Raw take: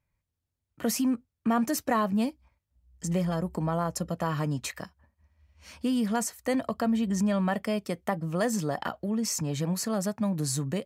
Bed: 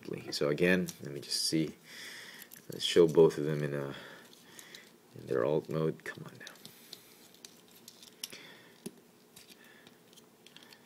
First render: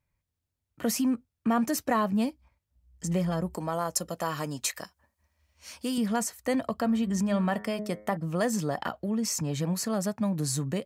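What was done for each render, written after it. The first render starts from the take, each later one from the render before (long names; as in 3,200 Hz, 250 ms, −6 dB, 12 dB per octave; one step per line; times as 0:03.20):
0:03.54–0:05.98: bass and treble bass −9 dB, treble +8 dB
0:06.79–0:08.17: hum removal 105.4 Hz, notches 21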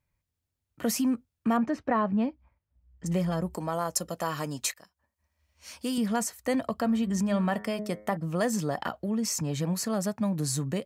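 0:01.57–0:03.06: low-pass filter 2,100 Hz
0:04.74–0:05.73: fade in, from −17.5 dB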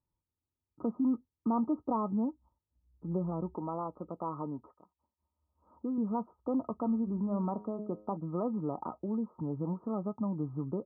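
wave folding −16.5 dBFS
Chebyshev low-pass with heavy ripple 1,300 Hz, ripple 9 dB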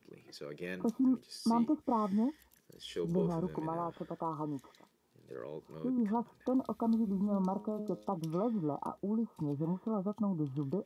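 mix in bed −14 dB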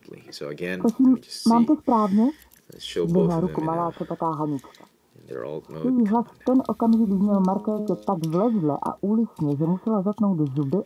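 level +12 dB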